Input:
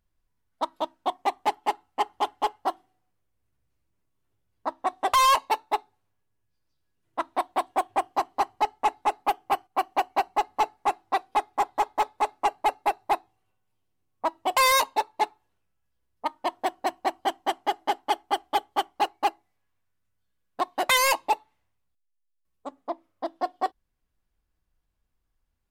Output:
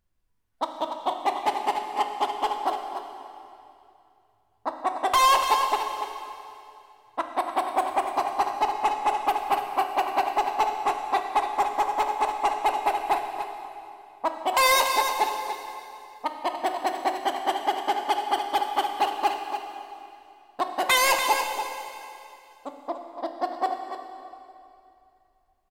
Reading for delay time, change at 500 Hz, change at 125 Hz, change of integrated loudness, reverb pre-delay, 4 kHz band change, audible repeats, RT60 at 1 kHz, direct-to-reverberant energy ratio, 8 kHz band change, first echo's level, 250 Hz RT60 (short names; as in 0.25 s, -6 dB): 0.288 s, +2.0 dB, n/a, +1.0 dB, 5 ms, +2.0 dB, 1, 2.6 s, 3.0 dB, +1.5 dB, -9.0 dB, 2.6 s